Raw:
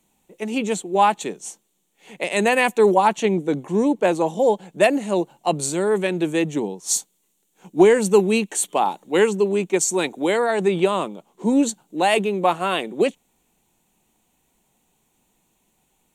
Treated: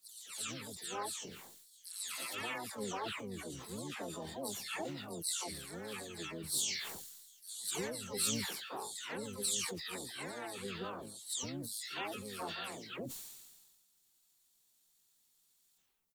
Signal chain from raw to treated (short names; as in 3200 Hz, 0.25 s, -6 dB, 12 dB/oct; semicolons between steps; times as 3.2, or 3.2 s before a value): spectral delay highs early, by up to 0.367 s; pre-emphasis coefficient 0.9; compressor 1.5:1, threshold -40 dBFS, peak gain reduction 8 dB; harmoniser -12 st -3 dB, -7 st -15 dB, +4 st -4 dB; added noise blue -77 dBFS; sustainer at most 38 dB/s; gain -7 dB